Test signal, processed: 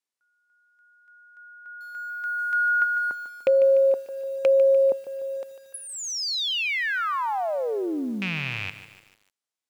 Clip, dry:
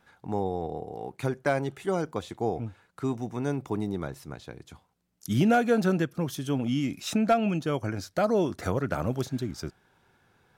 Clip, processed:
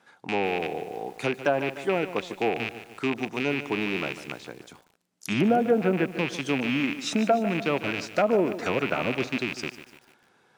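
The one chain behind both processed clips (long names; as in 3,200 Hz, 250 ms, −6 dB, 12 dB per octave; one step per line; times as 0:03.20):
loose part that buzzes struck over −35 dBFS, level −21 dBFS
high-pass filter 220 Hz 12 dB per octave
treble cut that deepens with the level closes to 720 Hz, closed at −19 dBFS
low-pass filter 9,500 Hz 12 dB per octave
high-shelf EQ 6,700 Hz +3.5 dB
feedback echo at a low word length 148 ms, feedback 55%, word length 8 bits, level −12.5 dB
level +3 dB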